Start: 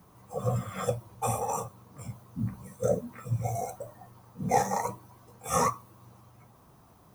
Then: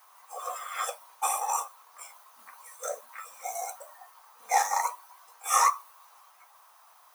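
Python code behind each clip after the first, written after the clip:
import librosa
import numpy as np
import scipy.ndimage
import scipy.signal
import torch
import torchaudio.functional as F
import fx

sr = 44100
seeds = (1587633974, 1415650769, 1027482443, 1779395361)

y = scipy.signal.sosfilt(scipy.signal.butter(4, 860.0, 'highpass', fs=sr, output='sos'), x)
y = F.gain(torch.from_numpy(y), 6.0).numpy()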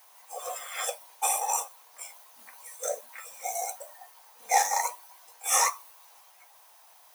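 y = fx.peak_eq(x, sr, hz=1200.0, db=-13.5, octaves=0.66)
y = F.gain(torch.from_numpy(y), 4.5).numpy()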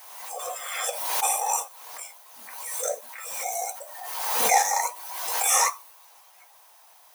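y = fx.pre_swell(x, sr, db_per_s=39.0)
y = F.gain(torch.from_numpy(y), 2.0).numpy()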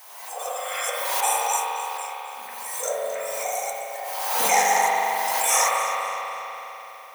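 y = fx.echo_alternate(x, sr, ms=132, hz=970.0, feedback_pct=57, wet_db=-8.5)
y = fx.rev_spring(y, sr, rt60_s=3.9, pass_ms=(41,), chirp_ms=60, drr_db=-4.0)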